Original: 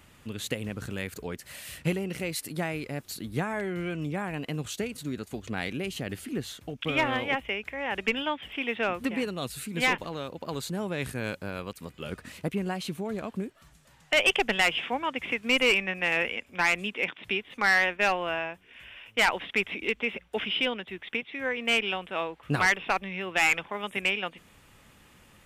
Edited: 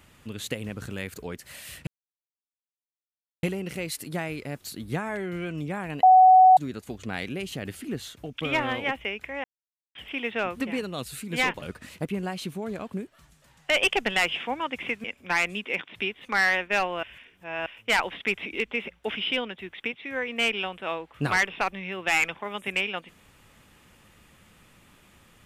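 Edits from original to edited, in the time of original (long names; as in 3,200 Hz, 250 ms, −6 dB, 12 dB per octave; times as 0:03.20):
0:01.87: splice in silence 1.56 s
0:04.47–0:05.01: beep over 747 Hz −10.5 dBFS
0:07.88–0:08.39: silence
0:10.06–0:12.05: remove
0:15.47–0:16.33: remove
0:18.32–0:18.95: reverse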